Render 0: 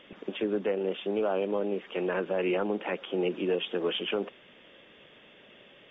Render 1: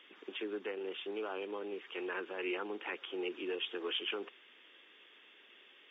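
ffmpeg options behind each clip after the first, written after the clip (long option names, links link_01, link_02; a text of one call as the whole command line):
ffmpeg -i in.wav -af "highpass=frequency=340:width=0.5412,highpass=frequency=340:width=1.3066,equalizer=frequency=590:width=1.8:gain=-15,volume=-3dB" out.wav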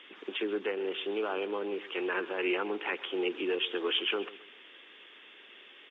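ffmpeg -i in.wav -af "aecho=1:1:132|264|396:0.133|0.0467|0.0163,volume=7dB" -ar 22050 -c:a nellymoser out.flv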